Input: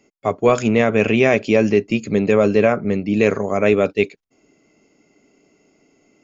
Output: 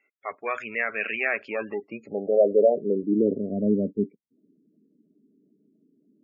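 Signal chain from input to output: Chebyshev shaper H 4 -25 dB, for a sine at -2.5 dBFS; band-pass sweep 1.8 kHz -> 220 Hz, 1.19–3.58 s; spectral gate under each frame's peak -20 dB strong

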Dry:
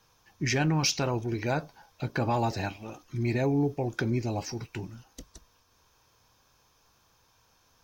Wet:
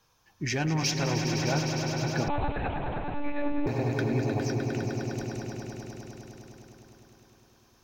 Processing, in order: on a send: echo with a slow build-up 102 ms, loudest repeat 5, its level -9 dB; 2.28–3.67 s: on the sum: monotone LPC vocoder at 8 kHz 290 Hz; trim -2.5 dB

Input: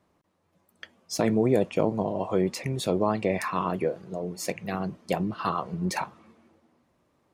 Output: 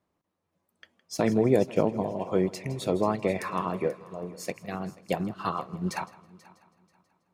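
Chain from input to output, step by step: multi-head delay 162 ms, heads first and third, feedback 41%, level -16 dB; upward expansion 1.5:1, over -41 dBFS; trim +1.5 dB

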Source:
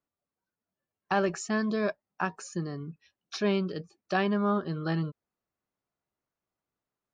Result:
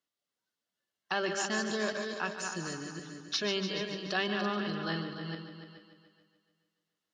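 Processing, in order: backward echo that repeats 214 ms, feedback 43%, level -6.5 dB; band-stop 2.4 kHz, Q 6.7; de-hum 65.66 Hz, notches 4; in parallel at -1 dB: peak limiter -25.5 dBFS, peak gain reduction 11.5 dB; on the sum: frequency weighting D; multi-head delay 146 ms, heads first and second, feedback 43%, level -12 dB; trim -9 dB

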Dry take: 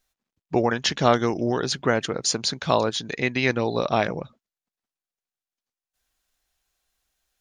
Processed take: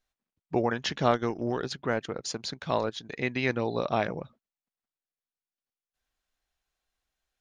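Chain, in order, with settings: treble shelf 6.1 kHz -11.5 dB; 1.11–3.16 s: transient shaper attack -4 dB, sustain -8 dB; trim -5 dB

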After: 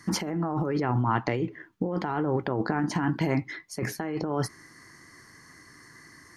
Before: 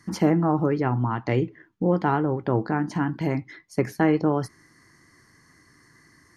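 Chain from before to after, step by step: bass shelf 320 Hz -5 dB; compressor with a negative ratio -29 dBFS, ratio -1; trim +2 dB

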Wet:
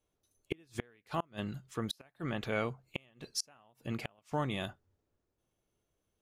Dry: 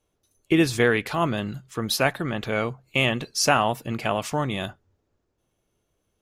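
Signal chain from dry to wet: inverted gate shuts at -13 dBFS, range -34 dB; trim -8 dB

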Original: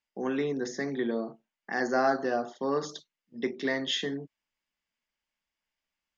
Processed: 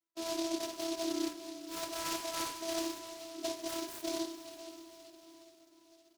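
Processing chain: rotating-head pitch shifter +8.5 st; treble shelf 5.6 kHz -9 dB; comb 6 ms, depth 76%; de-hum 156 Hz, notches 33; reverse; compression, threshold -36 dBFS, peak gain reduction 13.5 dB; reverse; vocoder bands 8, saw 330 Hz; echo that smears into a reverb 481 ms, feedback 52%, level -12 dB; spring tank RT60 1.5 s, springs 37/50 ms, chirp 65 ms, DRR 7 dB; delay time shaken by noise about 4.4 kHz, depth 0.13 ms; trim +4 dB

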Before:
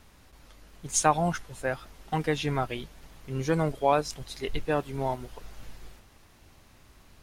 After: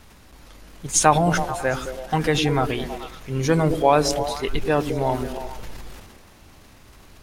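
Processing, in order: transient shaper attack +1 dB, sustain +7 dB; repeats whose band climbs or falls 108 ms, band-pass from 250 Hz, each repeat 0.7 oct, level -4 dB; trim +6 dB

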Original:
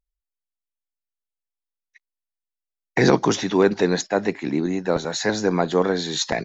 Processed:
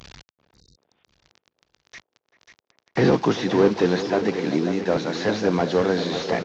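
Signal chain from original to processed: one-bit delta coder 32 kbps, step -33 dBFS; high-pass 78 Hz; feedback delay 541 ms, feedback 31%, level -9.5 dB; spectral replace 0.47–1.00 s, 520–3700 Hz both; band-passed feedback delay 388 ms, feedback 73%, band-pass 510 Hz, level -12 dB

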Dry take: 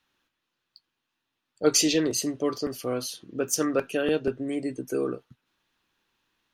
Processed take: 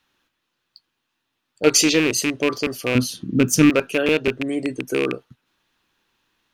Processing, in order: rattle on loud lows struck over -31 dBFS, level -17 dBFS; 2.95–3.70 s: resonant low shelf 330 Hz +12.5 dB, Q 1.5; trim +5.5 dB

